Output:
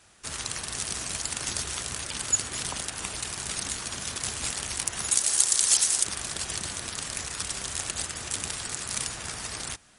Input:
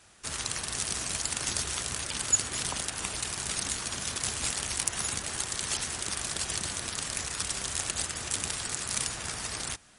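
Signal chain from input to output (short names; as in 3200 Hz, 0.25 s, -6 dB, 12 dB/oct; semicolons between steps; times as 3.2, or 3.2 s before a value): 5.11–6.04 tone controls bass -10 dB, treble +13 dB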